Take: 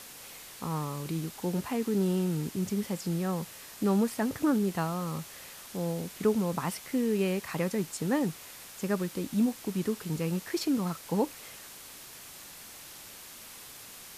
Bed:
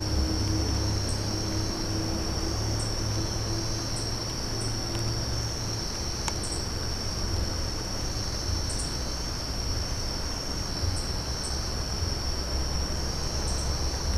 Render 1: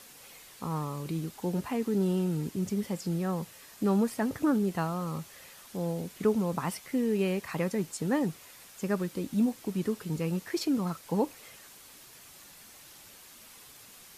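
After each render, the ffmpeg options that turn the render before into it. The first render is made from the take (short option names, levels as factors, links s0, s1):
-af "afftdn=nr=6:nf=-48"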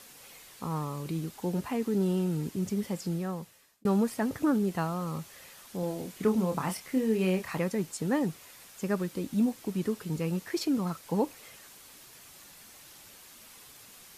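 -filter_complex "[0:a]asettb=1/sr,asplit=3[s0][s1][s2];[s0]atrim=end=5.804[s3];[s1]atrim=start=5.8:end=7.58,asetpts=PTS-STARTPTS,afade=t=in:d=0.004:c=qsin,afade=t=out:st=1.776:d=0.004:c=qsin,asplit=2[s4][s5];[s5]adelay=27,volume=0.501[s6];[s4][s6]amix=inputs=2:normalize=0,atrim=end_sample=78498[s7];[s2]atrim=start=7.576[s8];[s3][s7]acrossfade=d=0.004:c1=hsin:c2=qsin[s9];[s9][s8]acrossfade=d=0.004:c1=qsin:c2=hsin,asplit=2[s10][s11];[s10]atrim=end=3.85,asetpts=PTS-STARTPTS,afade=t=out:st=3.04:d=0.81[s12];[s11]atrim=start=3.85,asetpts=PTS-STARTPTS,afade=t=in:d=0.004:c=hsin[s13];[s12][s13]concat=n=2:v=0:a=1"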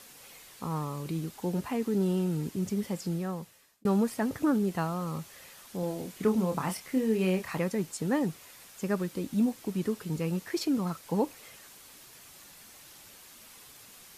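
-af anull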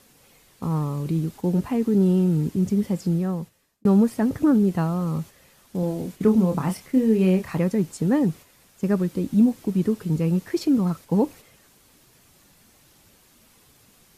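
-af "agate=range=0.501:threshold=0.00562:ratio=16:detection=peak,lowshelf=f=460:g=11.5"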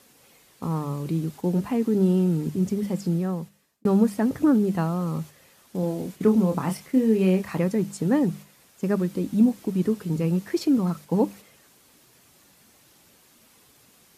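-af "highpass=f=120:p=1,bandreject=f=50:t=h:w=6,bandreject=f=100:t=h:w=6,bandreject=f=150:t=h:w=6,bandreject=f=200:t=h:w=6"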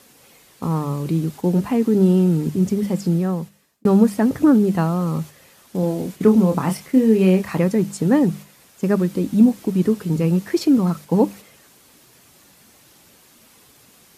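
-af "volume=1.88"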